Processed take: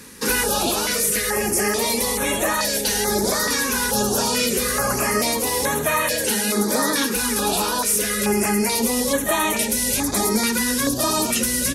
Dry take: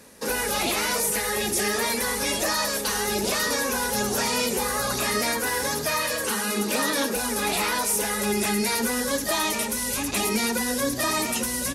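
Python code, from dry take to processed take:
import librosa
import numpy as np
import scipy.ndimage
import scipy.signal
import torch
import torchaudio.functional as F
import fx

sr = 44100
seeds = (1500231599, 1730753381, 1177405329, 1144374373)

y = fx.rider(x, sr, range_db=10, speed_s=0.5)
y = fx.filter_held_notch(y, sr, hz=2.3, low_hz=650.0, high_hz=4900.0)
y = y * librosa.db_to_amplitude(5.5)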